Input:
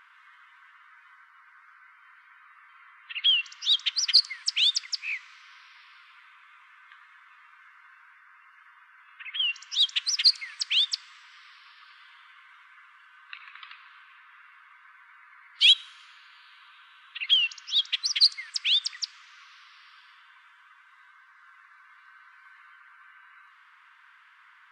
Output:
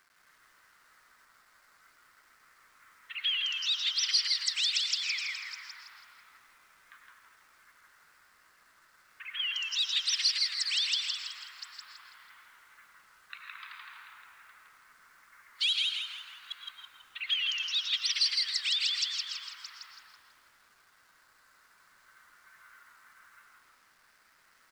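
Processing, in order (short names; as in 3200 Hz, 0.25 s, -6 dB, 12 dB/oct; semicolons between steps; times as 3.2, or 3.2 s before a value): reverse delay 0.403 s, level -13.5 dB; HPF 1200 Hz 12 dB/oct; gate -53 dBFS, range -10 dB; bell 3000 Hz -6 dB 0.64 oct; compressor 2.5:1, threshold -29 dBFS, peak gain reduction 9 dB; bit-crush 11-bit; frequency-shifting echo 0.164 s, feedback 43%, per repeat -100 Hz, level -3 dB; on a send at -7 dB: reverb RT60 0.45 s, pre-delay 75 ms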